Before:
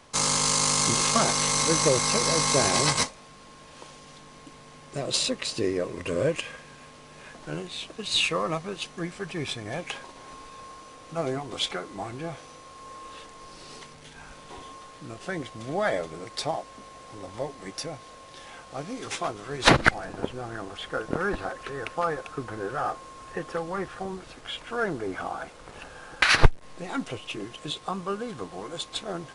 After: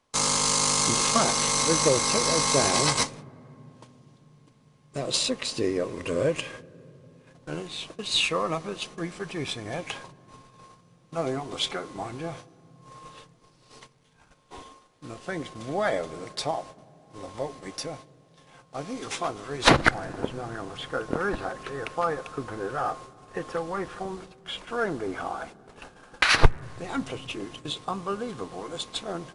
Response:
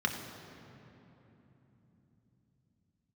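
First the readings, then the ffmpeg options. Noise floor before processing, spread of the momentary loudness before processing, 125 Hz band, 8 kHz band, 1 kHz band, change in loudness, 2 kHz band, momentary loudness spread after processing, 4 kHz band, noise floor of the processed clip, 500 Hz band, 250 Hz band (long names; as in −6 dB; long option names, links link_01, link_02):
−49 dBFS, 23 LU, −1.0 dB, 0.0 dB, +0.5 dB, 0.0 dB, −1.0 dB, 18 LU, 0.0 dB, −59 dBFS, +0.5 dB, +0.5 dB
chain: -filter_complex "[0:a]agate=range=-18dB:threshold=-42dB:ratio=16:detection=peak,asplit=2[link_01][link_02];[1:a]atrim=start_sample=2205,lowpass=1900[link_03];[link_02][link_03]afir=irnorm=-1:irlink=0,volume=-23dB[link_04];[link_01][link_04]amix=inputs=2:normalize=0"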